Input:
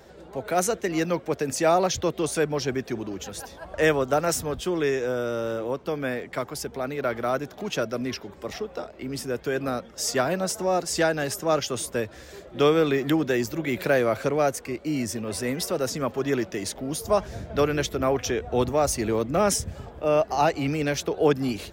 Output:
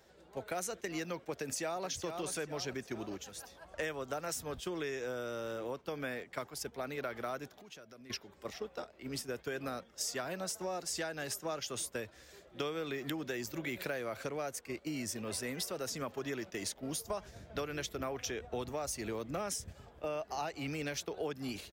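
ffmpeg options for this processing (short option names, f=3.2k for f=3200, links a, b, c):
-filter_complex "[0:a]asplit=2[a][b];[b]afade=t=in:st=1.32:d=0.01,afade=t=out:st=1.9:d=0.01,aecho=0:1:430|860|1290|1720|2150:0.298538|0.134342|0.060454|0.0272043|0.0122419[c];[a][c]amix=inputs=2:normalize=0,asettb=1/sr,asplit=3[d][e][f];[d]atrim=end=7.484[g];[e]atrim=start=7.48:end=8.1,asetpts=PTS-STARTPTS,afade=t=in:d=0.004:c=qsin,afade=t=out:st=0.616:d=0.004:c=qsin,acompressor=threshold=-38dB:ratio=4:attack=3.2:release=140:knee=1:detection=peak[h];[f]atrim=start=8.096[i];[g][h]acrossfade=d=0.004:c1=hsin:c2=qsin[j];[j][i]acrossfade=d=0.004:c1=qsin:c2=hsin,agate=range=-8dB:threshold=-32dB:ratio=16:detection=peak,tiltshelf=f=1.2k:g=-3.5,acompressor=threshold=-31dB:ratio=6,volume=-4.5dB"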